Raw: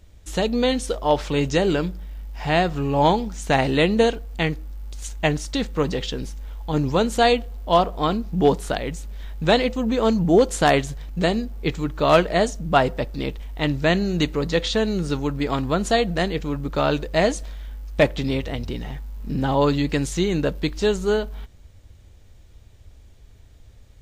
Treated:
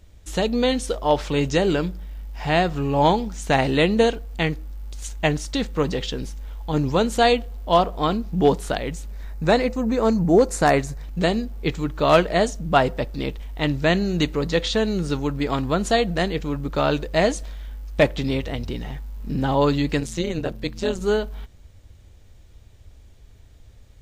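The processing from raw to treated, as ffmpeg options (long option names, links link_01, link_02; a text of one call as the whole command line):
ffmpeg -i in.wav -filter_complex "[0:a]asettb=1/sr,asplit=3[link_01][link_02][link_03];[link_01]atrim=end=9.114[link_04];[link_02]atrim=start=9.11:end=11.04,asetpts=PTS-STARTPTS,afade=type=in:duration=0.004:curve=qsin,afade=type=out:start_time=1.926:duration=0.004:curve=qsin,equalizer=frequency=3200:width=3.6:gain=-13[link_05];[link_03]atrim=start=11.036[link_06];[link_04][link_05]acrossfade=duration=0.004:curve1=hsin:curve2=qsin[link_07];[link_07][link_06]acrossfade=duration=0.004:curve1=qsin:curve2=hsin,asplit=3[link_08][link_09][link_10];[link_08]afade=type=out:start_time=19.99:duration=0.02[link_11];[link_09]tremolo=f=170:d=0.889,afade=type=in:start_time=19.99:duration=0.02,afade=type=out:start_time=21:duration=0.02[link_12];[link_10]afade=type=in:start_time=21:duration=0.02[link_13];[link_11][link_12][link_13]amix=inputs=3:normalize=0" out.wav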